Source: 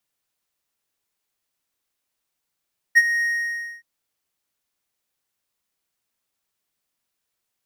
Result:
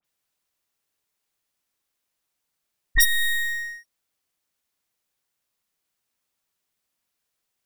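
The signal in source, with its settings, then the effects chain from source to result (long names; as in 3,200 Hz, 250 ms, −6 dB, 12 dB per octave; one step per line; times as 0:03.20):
note with an ADSR envelope triangle 1,870 Hz, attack 25 ms, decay 41 ms, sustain −11.5 dB, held 0.27 s, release 603 ms −5.5 dBFS
stylus tracing distortion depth 0.34 ms
all-pass dispersion highs, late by 46 ms, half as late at 2,800 Hz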